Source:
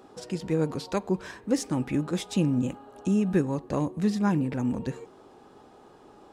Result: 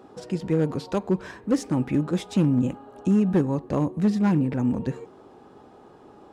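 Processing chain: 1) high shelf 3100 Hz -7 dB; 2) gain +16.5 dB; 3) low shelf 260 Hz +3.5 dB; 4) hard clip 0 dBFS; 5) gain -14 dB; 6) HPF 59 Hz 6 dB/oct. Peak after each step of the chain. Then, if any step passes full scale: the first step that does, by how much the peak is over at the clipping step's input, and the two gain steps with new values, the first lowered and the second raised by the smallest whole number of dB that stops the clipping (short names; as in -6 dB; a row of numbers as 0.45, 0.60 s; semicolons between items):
-13.5, +3.0, +5.5, 0.0, -14.0, -12.5 dBFS; step 2, 5.5 dB; step 2 +10.5 dB, step 5 -8 dB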